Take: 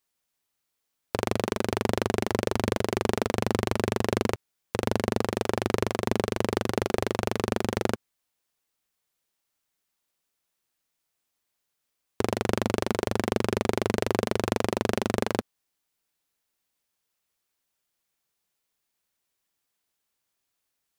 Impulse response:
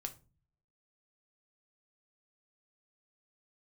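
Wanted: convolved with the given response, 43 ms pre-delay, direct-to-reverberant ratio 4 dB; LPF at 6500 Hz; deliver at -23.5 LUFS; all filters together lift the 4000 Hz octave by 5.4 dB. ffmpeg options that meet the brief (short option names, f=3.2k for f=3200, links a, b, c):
-filter_complex "[0:a]lowpass=6.5k,equalizer=f=4k:t=o:g=7.5,asplit=2[a][b];[1:a]atrim=start_sample=2205,adelay=43[c];[b][c]afir=irnorm=-1:irlink=0,volume=-1.5dB[d];[a][d]amix=inputs=2:normalize=0,volume=3dB"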